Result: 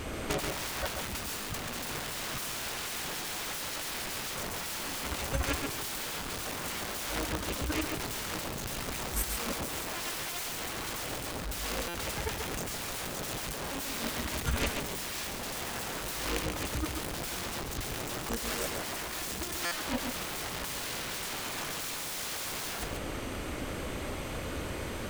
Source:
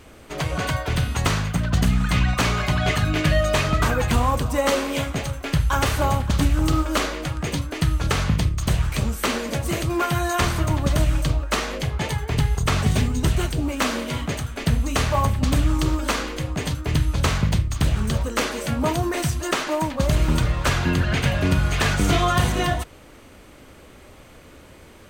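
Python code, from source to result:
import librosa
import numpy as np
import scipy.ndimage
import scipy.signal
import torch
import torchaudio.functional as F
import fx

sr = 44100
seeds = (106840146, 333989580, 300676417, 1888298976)

p1 = (np.mod(10.0 ** (23.0 / 20.0) * x + 1.0, 2.0) - 1.0) / 10.0 ** (23.0 / 20.0)
p2 = fx.over_compress(p1, sr, threshold_db=-34.0, ratio=-0.5)
p3 = p2 + fx.echo_single(p2, sr, ms=136, db=-5.5, dry=0)
y = fx.buffer_glitch(p3, sr, at_s=(11.88, 19.65), block=256, repeats=10)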